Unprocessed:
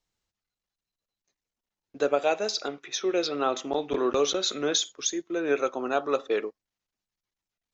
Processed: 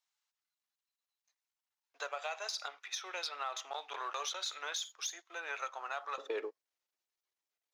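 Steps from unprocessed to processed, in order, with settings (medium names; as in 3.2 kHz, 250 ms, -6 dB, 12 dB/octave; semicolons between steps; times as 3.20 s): partial rectifier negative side -3 dB; high-pass 800 Hz 24 dB/octave, from 6.18 s 360 Hz; peak limiter -22.5 dBFS, peak gain reduction 8.5 dB; compression 2:1, threshold -36 dBFS, peak gain reduction 5 dB; trim -1.5 dB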